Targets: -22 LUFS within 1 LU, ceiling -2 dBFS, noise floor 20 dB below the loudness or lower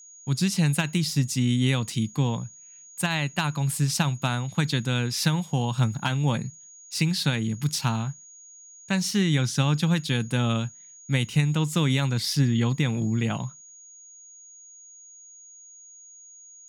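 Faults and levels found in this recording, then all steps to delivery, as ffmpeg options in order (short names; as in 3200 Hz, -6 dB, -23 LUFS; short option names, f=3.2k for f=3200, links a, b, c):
steady tone 6700 Hz; tone level -46 dBFS; loudness -25.5 LUFS; peak -8.5 dBFS; loudness target -22.0 LUFS
-> -af "bandreject=f=6.7k:w=30"
-af "volume=3.5dB"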